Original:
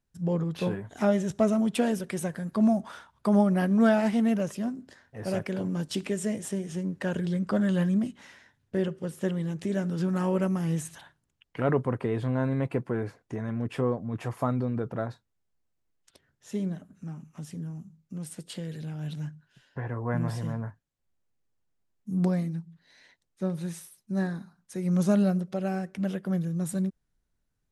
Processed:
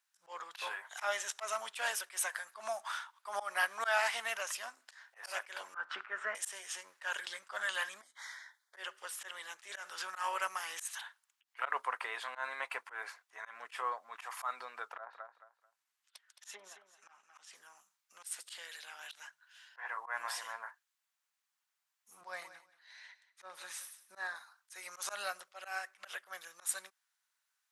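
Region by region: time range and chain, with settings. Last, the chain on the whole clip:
5.74–6.35 synth low-pass 1400 Hz, resonance Q 5.8 + low shelf 320 Hz +11.5 dB
8.01–8.77 Butterworth band-stop 2700 Hz, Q 2.1 + compressor 4:1, threshold -46 dBFS
14.91–17.55 treble ducked by the level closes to 1000 Hz, closed at -27 dBFS + transient shaper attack +2 dB, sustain -7 dB + feedback echo 0.219 s, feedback 25%, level -11.5 dB
22.21–24.36 tilt -2 dB/oct + feedback echo 0.179 s, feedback 18%, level -16 dB
whole clip: HPF 1000 Hz 24 dB/oct; auto swell 0.116 s; gain +6 dB

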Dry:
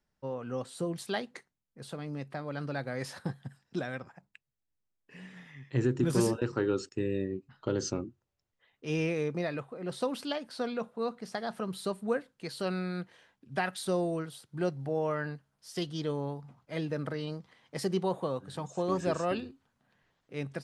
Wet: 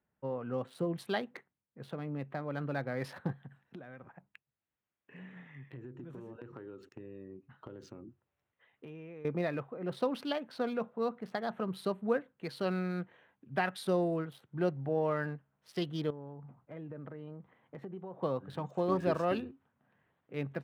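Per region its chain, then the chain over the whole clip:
3.32–9.25 compressor 10:1, threshold -43 dBFS + mismatched tape noise reduction encoder only
16.1–18.23 bell 10000 Hz -12.5 dB 2.9 oct + compressor 4:1, threshold -42 dBFS
whole clip: Wiener smoothing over 9 samples; HPF 76 Hz; bell 7300 Hz -11 dB 0.87 oct

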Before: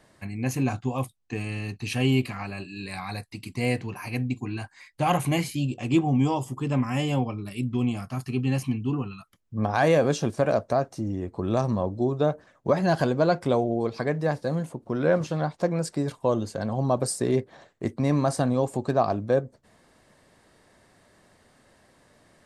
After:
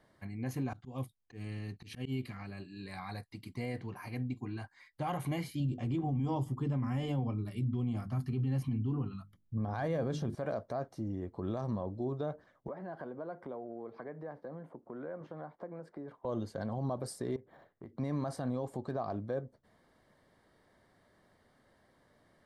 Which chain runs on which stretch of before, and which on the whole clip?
0.73–2.79 dynamic EQ 890 Hz, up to -8 dB, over -44 dBFS, Q 0.88 + auto swell 0.114 s
5.6–10.35 low shelf 230 Hz +11 dB + notches 50/100/150/200/250/300/350 Hz
12.68–16.25 three-band isolator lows -14 dB, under 200 Hz, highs -21 dB, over 2100 Hz + compressor 3:1, threshold -34 dBFS
17.36–17.98 compressor 12:1, threshold -35 dBFS + high shelf 4200 Hz -11 dB + decimation joined by straight lines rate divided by 4×
whole clip: limiter -18 dBFS; bell 7500 Hz -10 dB 1.1 oct; notch 2600 Hz, Q 5.5; gain -8 dB

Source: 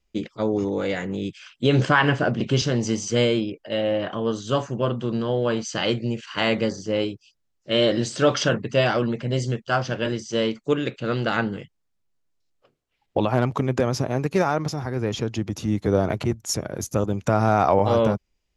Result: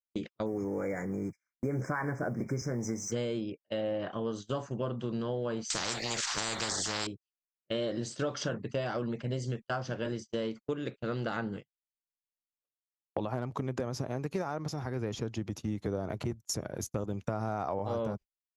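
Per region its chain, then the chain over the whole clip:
0.46–3.12 G.711 law mismatch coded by mu + brick-wall FIR band-stop 2400–5000 Hz
5.7–7.07 bell 2000 Hz +4 dB 2.5 oct + spectral compressor 10:1
whole clip: gate -31 dBFS, range -37 dB; dynamic EQ 2700 Hz, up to -6 dB, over -39 dBFS, Q 1.2; compressor, threshold -23 dBFS; gain -6.5 dB

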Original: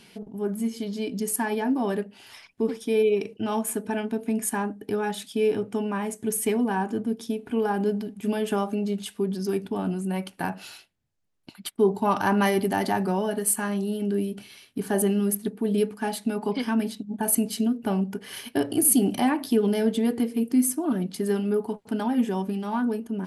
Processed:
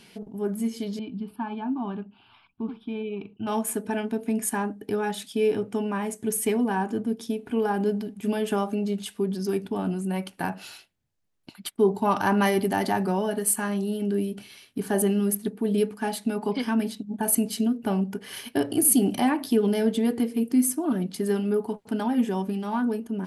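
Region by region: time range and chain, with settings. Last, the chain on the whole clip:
0.99–3.47 air absorption 410 m + fixed phaser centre 1900 Hz, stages 6
whole clip: dry

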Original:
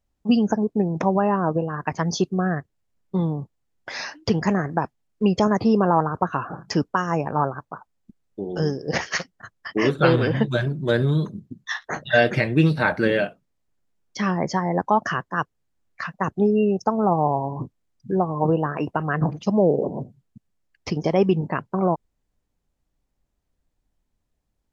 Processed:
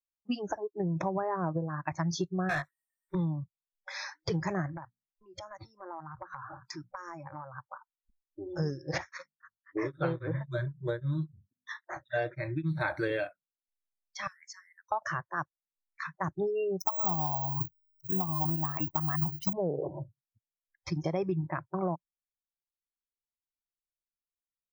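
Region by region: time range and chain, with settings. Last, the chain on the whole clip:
2.49–3.15 tilt shelf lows -4.5 dB, about 770 Hz + overdrive pedal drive 26 dB, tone 2000 Hz, clips at -13 dBFS + doubler 20 ms -4.5 dB
4.73–7.56 notches 60/120/180/240 Hz + compressor 10:1, threshold -28 dBFS
8.98–12.81 high shelf 2400 Hz -11.5 dB + notches 50/100/150/200/250 Hz + beating tremolo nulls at 3.7 Hz
14.27–14.92 steep high-pass 1300 Hz + differentiator
16.8–19.53 high shelf 5000 Hz +9 dB + comb 1 ms, depth 87% + careless resampling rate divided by 2×, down filtered, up zero stuff
whole clip: spectral noise reduction 29 dB; dynamic EQ 170 Hz, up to +5 dB, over -38 dBFS, Q 2.7; compressor 6:1, threshold -19 dBFS; gain -7.5 dB

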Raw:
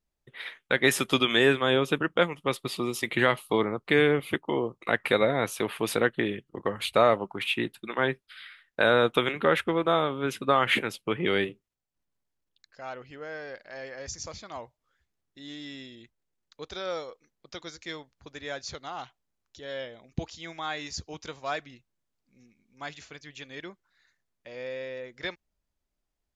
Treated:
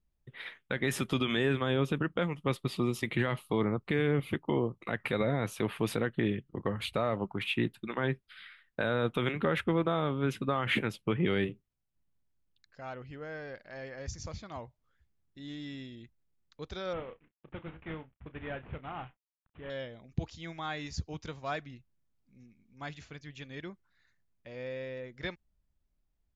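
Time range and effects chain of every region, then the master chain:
16.93–19.7 CVSD 16 kbps + doubler 31 ms -13 dB
whole clip: tone controls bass +11 dB, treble -5 dB; limiter -14.5 dBFS; gain -4 dB

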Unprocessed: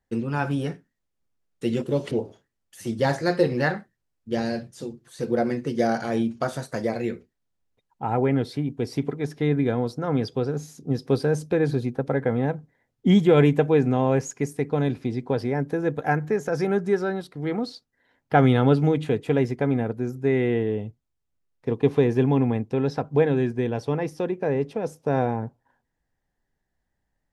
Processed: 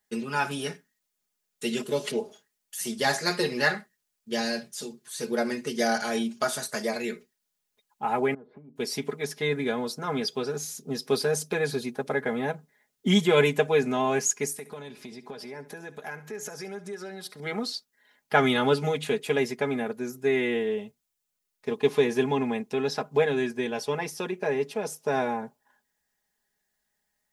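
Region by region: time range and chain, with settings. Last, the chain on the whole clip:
8.34–8.76 LPF 1200 Hz 24 dB/oct + compressor 5:1, threshold -38 dBFS
14.51–17.4 compressor 4:1, threshold -34 dBFS + feedback echo 69 ms, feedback 38%, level -16.5 dB
whole clip: tilt +3.5 dB/oct; comb 4.8 ms, depth 81%; gain -1.5 dB

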